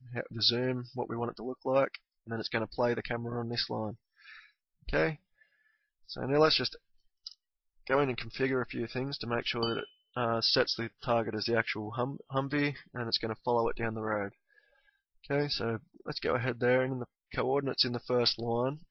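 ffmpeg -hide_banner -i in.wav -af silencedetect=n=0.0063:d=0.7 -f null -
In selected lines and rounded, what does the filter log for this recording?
silence_start: 5.15
silence_end: 6.09 | silence_duration: 0.94
silence_start: 14.29
silence_end: 15.24 | silence_duration: 0.95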